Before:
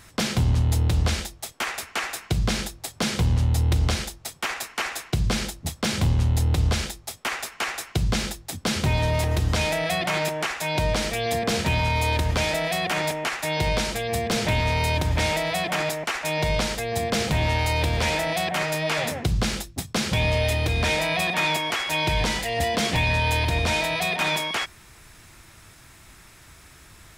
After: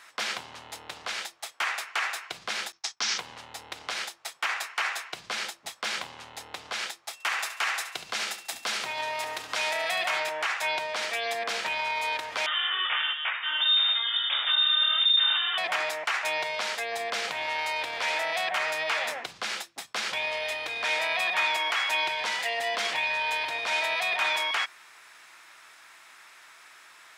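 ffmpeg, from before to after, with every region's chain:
ffmpeg -i in.wav -filter_complex "[0:a]asettb=1/sr,asplit=3[link_01][link_02][link_03];[link_01]atrim=end=2.724[link_04];[link_02]atrim=start=2.72:end=3.18,asetpts=PTS-STARTPTS,afade=type=in:duration=0.004:curve=qsin,afade=type=out:start_time=0.456:duration=0.004:curve=qsin,agate=range=-33dB:threshold=-39dB:ratio=3:release=100:detection=peak,lowpass=frequency=5800:width_type=q:width=4.2,equalizer=frequency=560:width_type=o:width=0.38:gain=-13[link_05];[link_03]atrim=start=3.176[link_06];[link_04][link_05]acrossfade=duration=0.004:curve1=hsin:curve2=qsin[link_07];[link_07][link_06]acrossfade=duration=0.004:curve1=qsin:curve2=hsin,asettb=1/sr,asplit=3[link_08][link_09][link_10];[link_08]atrim=end=7.134[link_11];[link_09]atrim=start=7.13:end=10.2,asetpts=PTS-STARTPTS,afade=type=in:duration=0.004:curve=qsin,afade=type=out:start_time=3.066:duration=0.004:curve=qsin,highshelf=frequency=5100:gain=5,aeval=exprs='val(0)+0.00224*sin(2*PI*2700*n/s)':channel_layout=same,aecho=1:1:70|140|210|280:0.282|0.0958|0.0326|0.0111,atrim=end_sample=135387[link_12];[link_10]atrim=start=10.196[link_13];[link_11][link_12]acrossfade=duration=0.004:curve1=hsin:curve2=qsin[link_14];[link_14][link_13]acrossfade=duration=0.004:curve1=qsin:curve2=hsin,asettb=1/sr,asplit=3[link_15][link_16][link_17];[link_15]atrim=end=12.464[link_18];[link_16]atrim=start=12.46:end=15.58,asetpts=PTS-STARTPTS,afade=type=in:duration=0.004:curve=qsin,afade=type=out:start_time=3.116:duration=0.004:curve=qsin,asubboost=boost=11:cutoff=81,flanger=delay=16.5:depth=6.4:speed=1.3,lowpass=frequency=3100:width_type=q:width=0.5098,lowpass=frequency=3100:width_type=q:width=0.6013,lowpass=frequency=3100:width_type=q:width=0.9,lowpass=frequency=3100:width_type=q:width=2.563,afreqshift=-3700[link_19];[link_17]atrim=start=15.576[link_20];[link_18][link_19]acrossfade=duration=0.004:curve1=hsin:curve2=qsin[link_21];[link_21][link_20]acrossfade=duration=0.004:curve1=qsin:curve2=hsin,lowpass=frequency=2400:poles=1,alimiter=limit=-20dB:level=0:latency=1:release=51,highpass=1000,volume=4.5dB" out.wav

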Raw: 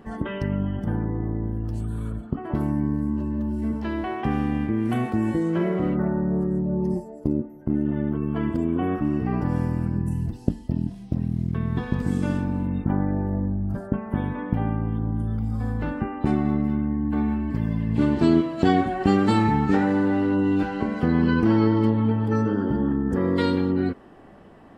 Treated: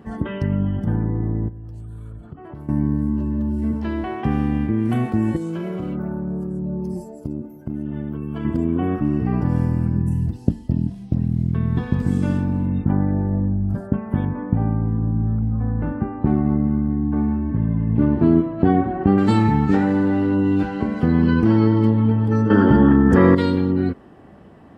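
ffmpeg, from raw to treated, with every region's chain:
ffmpeg -i in.wav -filter_complex "[0:a]asettb=1/sr,asplit=3[link_01][link_02][link_03];[link_01]atrim=end=1.484[link_04];[link_02]atrim=start=1.48:end=2.69,asetpts=PTS-STARTPTS,afade=type=in:duration=0.004:curve=qsin,afade=type=out:start_time=1.206:duration=0.004:curve=qsin,equalizer=frequency=230:width_type=o:width=0.42:gain=-9,acompressor=threshold=-37dB:ratio=5:attack=3.2:release=140:knee=1:detection=peak[link_05];[link_03]atrim=start=2.686[link_06];[link_04][link_05]acrossfade=duration=0.004:curve1=hsin:curve2=qsin[link_07];[link_07][link_06]acrossfade=duration=0.004:curve1=qsin:curve2=hsin,asettb=1/sr,asplit=3[link_08][link_09][link_10];[link_08]atrim=end=5.364[link_11];[link_09]atrim=start=5.36:end=8.45,asetpts=PTS-STARTPTS,afade=type=in:duration=0.004:curve=qsin,afade=type=out:start_time=3.086:duration=0.004:curve=qsin,highshelf=frequency=2800:gain=11.5,acompressor=threshold=-26dB:ratio=6:attack=3.2:release=140:knee=1:detection=peak,asuperstop=centerf=1900:order=4:qfactor=7.6[link_12];[link_10]atrim=start=8.446[link_13];[link_11][link_12]acrossfade=duration=0.004:curve1=hsin:curve2=qsin[link_14];[link_14][link_13]acrossfade=duration=0.004:curve1=qsin:curve2=hsin,asettb=1/sr,asplit=3[link_15][link_16][link_17];[link_15]atrim=end=14.254[link_18];[link_16]atrim=start=14.25:end=19.18,asetpts=PTS-STARTPTS,afade=type=in:duration=0.004:curve=qsin,afade=type=out:start_time=4.926:duration=0.004:curve=qsin,lowpass=1500,aecho=1:1:637:0.119,atrim=end_sample=217413[link_19];[link_17]atrim=start=19.176[link_20];[link_18][link_19]acrossfade=duration=0.004:curve1=hsin:curve2=qsin[link_21];[link_21][link_20]acrossfade=duration=0.004:curve1=qsin:curve2=hsin,asettb=1/sr,asplit=3[link_22][link_23][link_24];[link_22]atrim=end=22.504[link_25];[link_23]atrim=start=22.5:end=23.35,asetpts=PTS-STARTPTS,afade=type=in:duration=0.004:curve=qsin,afade=type=out:start_time=0.846:duration=0.004:curve=qsin,equalizer=frequency=1900:width=0.36:gain=9.5,acontrast=43[link_26];[link_24]atrim=start=23.346[link_27];[link_25][link_26]acrossfade=duration=0.004:curve1=hsin:curve2=qsin[link_28];[link_28][link_27]acrossfade=duration=0.004:curve1=qsin:curve2=hsin,highpass=62,lowshelf=frequency=210:gain=8" out.wav

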